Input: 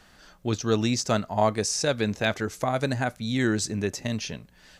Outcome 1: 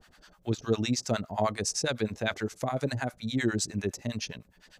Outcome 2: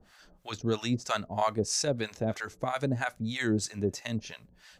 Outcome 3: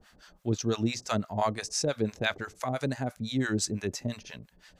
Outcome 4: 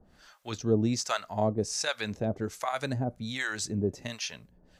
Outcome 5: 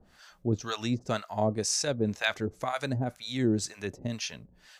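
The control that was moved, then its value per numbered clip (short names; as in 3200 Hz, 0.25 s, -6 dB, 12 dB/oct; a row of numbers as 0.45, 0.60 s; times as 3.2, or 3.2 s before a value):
harmonic tremolo, rate: 9.8, 3.1, 5.9, 1.3, 2 Hz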